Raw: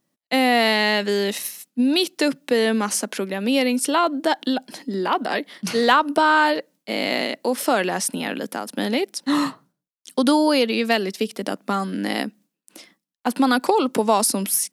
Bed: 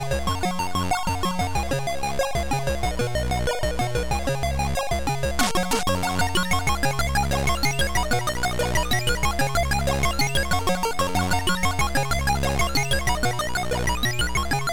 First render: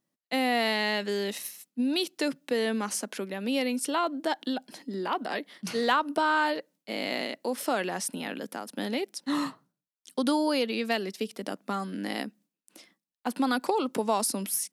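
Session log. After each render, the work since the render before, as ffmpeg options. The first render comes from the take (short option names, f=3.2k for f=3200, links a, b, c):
-af "volume=-8.5dB"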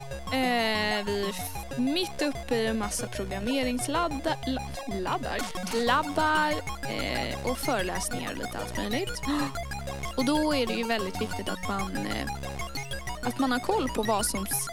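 -filter_complex "[1:a]volume=-12.5dB[a];[0:a][a]amix=inputs=2:normalize=0"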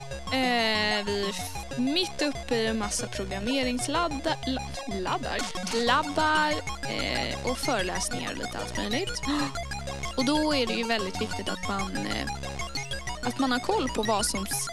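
-af "lowpass=6.2k,highshelf=f=4.7k:g=11"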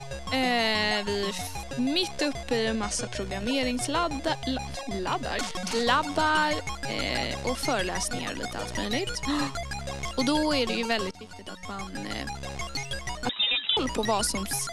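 -filter_complex "[0:a]asettb=1/sr,asplit=3[a][b][c];[a]atrim=end=2.574[d];[b]atrim=start=2.57:end=3.22,asetpts=PTS-STARTPTS,afade=t=in:d=0.004:c=qsin,afade=t=out:st=0.646:d=0.004:c=qsin,lowpass=f=9.9k:w=0.5412,lowpass=f=9.9k:w=1.3066[e];[c]atrim=start=3.216[f];[d][e]acrossfade=d=0.004:c1=hsin:c2=qsin[g];[g][f]acrossfade=d=0.004:c1=qsin:c2=hsin,asettb=1/sr,asplit=3[h][i][j];[h]atrim=end=13.294[k];[i]atrim=start=13.29:end=13.77,asetpts=PTS-STARTPTS,afade=t=in:d=0.004:c=qsin,afade=t=out:st=0.476:d=0.004:c=qsin,lowpass=f=3.3k:t=q:w=0.5098,lowpass=f=3.3k:t=q:w=0.6013,lowpass=f=3.3k:t=q:w=0.9,lowpass=f=3.3k:t=q:w=2.563,afreqshift=-3900[l];[j]atrim=start=13.766[m];[k][l]acrossfade=d=0.004:c1=hsin:c2=qsin[n];[n][m]acrossfade=d=0.004:c1=qsin:c2=hsin,asplit=2[o][p];[o]atrim=end=11.11,asetpts=PTS-STARTPTS,afade=t=out:st=11.106:d=0.004:c=hsin:silence=0.149624[q];[p]atrim=start=11.11,asetpts=PTS-STARTPTS,afade=t=in:d=1.64:silence=0.149624[r];[q][r]concat=n=2:v=0:a=1"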